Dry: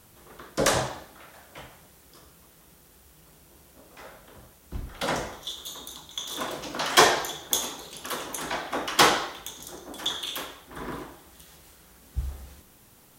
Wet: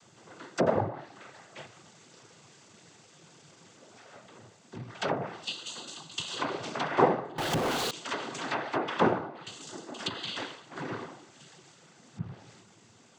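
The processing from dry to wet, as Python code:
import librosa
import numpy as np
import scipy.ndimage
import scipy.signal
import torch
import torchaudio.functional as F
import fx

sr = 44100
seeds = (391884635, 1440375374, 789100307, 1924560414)

y = fx.clip_1bit(x, sr, at=(1.65, 4.12))
y = fx.cheby_harmonics(y, sr, harmonics=(8,), levels_db=(-14,), full_scale_db=-1.5)
y = fx.env_lowpass_down(y, sr, base_hz=740.0, full_db=-22.5)
y = fx.noise_vocoder(y, sr, seeds[0], bands=16)
y = fx.power_curve(y, sr, exponent=0.35, at=(7.38, 7.91))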